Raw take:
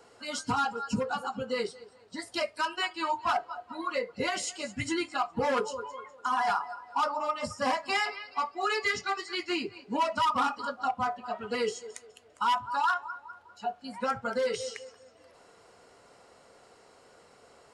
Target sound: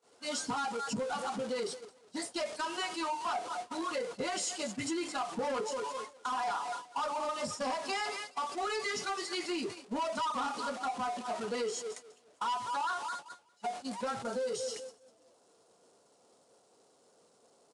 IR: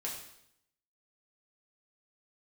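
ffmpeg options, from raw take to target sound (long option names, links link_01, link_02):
-af "aeval=exprs='val(0)+0.5*0.0224*sgn(val(0))':channel_layout=same,highpass=190,agate=range=-40dB:threshold=-35dB:ratio=16:detection=peak,asetnsamples=nb_out_samples=441:pad=0,asendcmd='14.23 equalizer g -14.5',equalizer=frequency=2000:width_type=o:width=1.6:gain=-6,acompressor=threshold=-32dB:ratio=2,asoftclip=type=tanh:threshold=-27.5dB,aresample=22050,aresample=44100"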